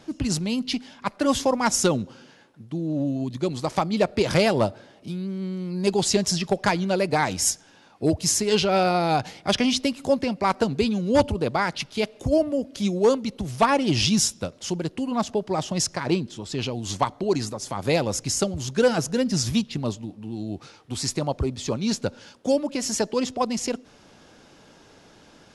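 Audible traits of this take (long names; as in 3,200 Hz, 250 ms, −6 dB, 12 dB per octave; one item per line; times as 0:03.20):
background noise floor −53 dBFS
spectral slope −4.0 dB per octave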